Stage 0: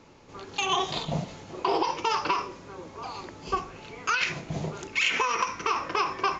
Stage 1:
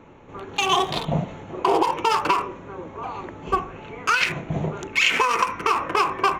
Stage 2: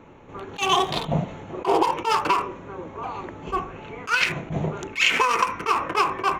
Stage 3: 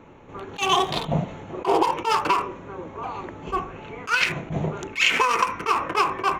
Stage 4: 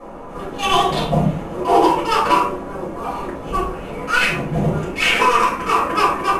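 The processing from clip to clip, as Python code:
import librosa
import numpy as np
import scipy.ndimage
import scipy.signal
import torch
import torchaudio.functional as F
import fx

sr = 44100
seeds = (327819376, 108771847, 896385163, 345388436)

y1 = fx.wiener(x, sr, points=9)
y1 = F.gain(torch.from_numpy(y1), 6.5).numpy()
y2 = fx.attack_slew(y1, sr, db_per_s=270.0)
y3 = y2
y4 = fx.cvsd(y3, sr, bps=64000)
y4 = fx.dmg_noise_band(y4, sr, seeds[0], low_hz=210.0, high_hz=1100.0, level_db=-43.0)
y4 = fx.room_shoebox(y4, sr, seeds[1], volume_m3=180.0, walls='furnished', distance_m=5.9)
y4 = F.gain(torch.from_numpy(y4), -5.0).numpy()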